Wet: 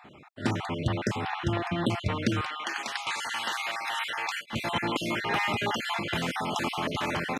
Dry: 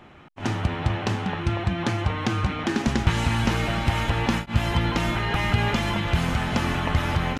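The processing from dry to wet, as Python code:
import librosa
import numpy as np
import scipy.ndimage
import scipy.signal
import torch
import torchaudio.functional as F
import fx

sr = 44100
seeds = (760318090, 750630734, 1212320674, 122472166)

y = fx.spec_dropout(x, sr, seeds[0], share_pct=35)
y = fx.highpass(y, sr, hz=fx.steps((0.0, 120.0), (2.41, 970.0), (4.53, 250.0)), slope=12)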